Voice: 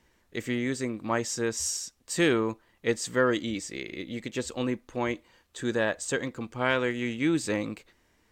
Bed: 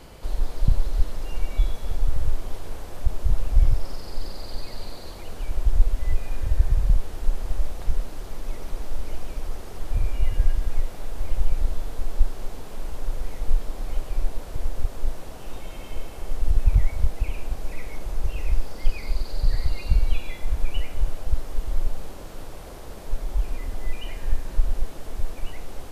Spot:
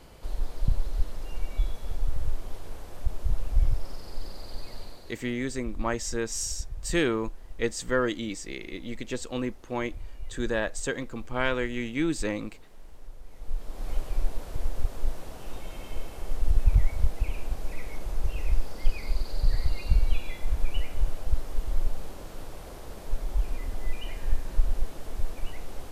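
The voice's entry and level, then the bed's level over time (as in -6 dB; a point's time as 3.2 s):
4.75 s, -1.5 dB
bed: 4.77 s -5.5 dB
5.44 s -17 dB
13.24 s -17 dB
13.89 s -2.5 dB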